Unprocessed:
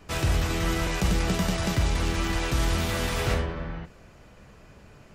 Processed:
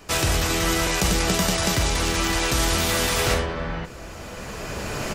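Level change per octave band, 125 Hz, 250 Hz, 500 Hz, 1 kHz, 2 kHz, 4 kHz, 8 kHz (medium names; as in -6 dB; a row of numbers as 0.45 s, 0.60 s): +0.5 dB, +3.0 dB, +6.0 dB, +6.5 dB, +6.5 dB, +9.0 dB, +11.5 dB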